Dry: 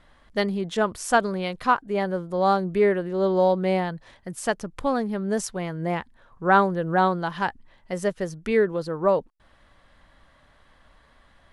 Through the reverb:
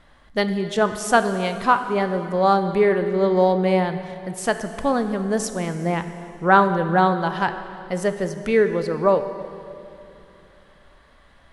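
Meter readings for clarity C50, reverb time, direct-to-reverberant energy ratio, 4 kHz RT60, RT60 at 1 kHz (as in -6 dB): 9.5 dB, 2.8 s, 8.5 dB, 2.4 s, 2.6 s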